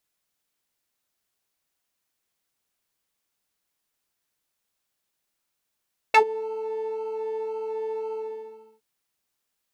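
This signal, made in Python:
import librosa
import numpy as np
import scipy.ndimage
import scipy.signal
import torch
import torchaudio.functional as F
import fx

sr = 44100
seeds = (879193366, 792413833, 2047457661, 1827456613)

y = fx.sub_patch_pwm(sr, seeds[0], note=69, wave2='square', interval_st=12, detune_cents=28, level2_db=-6.5, sub_db=-23.5, noise_db=-30.0, kind='bandpass', cutoff_hz=220.0, q=2.2, env_oct=3.5, env_decay_s=0.07, env_sustain_pct=30, attack_ms=6.8, decay_s=0.09, sustain_db=-23.0, release_s=0.68, note_s=1.99, lfo_hz=1.9, width_pct=28, width_swing_pct=4)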